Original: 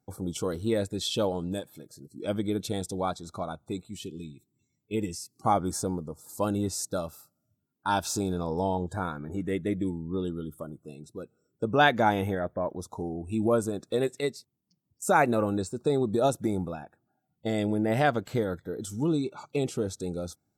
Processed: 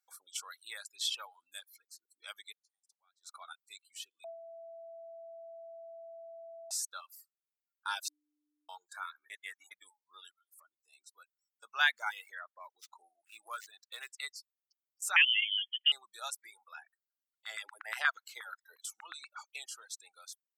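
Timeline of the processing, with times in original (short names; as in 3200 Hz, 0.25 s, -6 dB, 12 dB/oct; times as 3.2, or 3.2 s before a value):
2.52–3.37 flipped gate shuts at -26 dBFS, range -34 dB
4.24–6.71 bleep 665 Hz -16.5 dBFS
8.08–8.69 bleep 298 Hz -24 dBFS
9.3–9.71 reverse
10.31–10.93 compressor 2.5:1, threshold -47 dBFS
11.94–14.13 median filter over 5 samples
15.16–15.92 inverted band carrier 3300 Hz
16.74–19.44 LFO high-pass saw down 8.4 Hz 230–1600 Hz
whole clip: reverb removal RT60 0.75 s; HPF 1300 Hz 24 dB/oct; reverb removal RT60 0.6 s; gain -1.5 dB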